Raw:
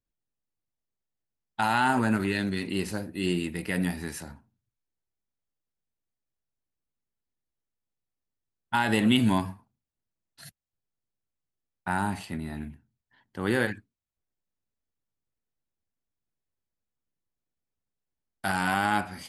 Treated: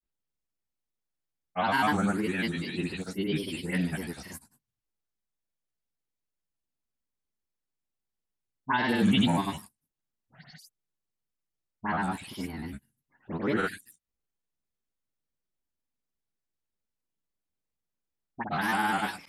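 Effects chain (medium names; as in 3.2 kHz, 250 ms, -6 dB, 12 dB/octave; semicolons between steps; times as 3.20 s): delay that grows with frequency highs late, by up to 187 ms; granulator, grains 20 per s, spray 100 ms, pitch spread up and down by 3 st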